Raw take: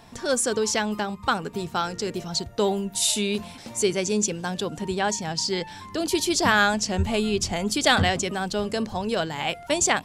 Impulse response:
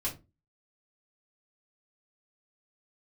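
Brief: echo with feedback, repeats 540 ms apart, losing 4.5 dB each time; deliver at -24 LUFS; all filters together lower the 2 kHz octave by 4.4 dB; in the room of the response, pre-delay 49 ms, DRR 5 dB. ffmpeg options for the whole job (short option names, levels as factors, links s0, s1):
-filter_complex "[0:a]equalizer=f=2000:t=o:g=-6,aecho=1:1:540|1080|1620|2160|2700|3240|3780|4320|4860:0.596|0.357|0.214|0.129|0.0772|0.0463|0.0278|0.0167|0.01,asplit=2[s0][s1];[1:a]atrim=start_sample=2205,adelay=49[s2];[s1][s2]afir=irnorm=-1:irlink=0,volume=0.376[s3];[s0][s3]amix=inputs=2:normalize=0,volume=0.841"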